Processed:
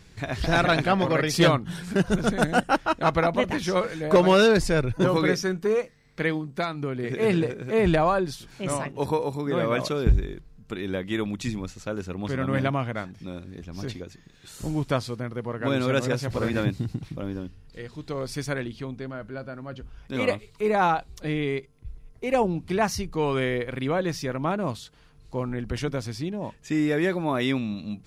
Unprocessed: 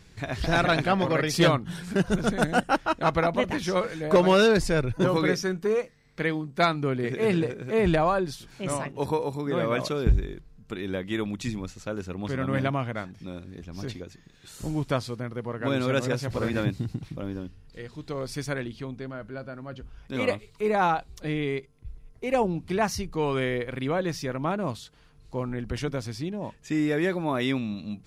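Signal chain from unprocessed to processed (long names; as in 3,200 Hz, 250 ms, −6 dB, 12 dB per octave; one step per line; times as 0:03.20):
0:06.37–0:07.10: downward compressor 4 to 1, threshold −27 dBFS, peak gain reduction 9 dB
level +1.5 dB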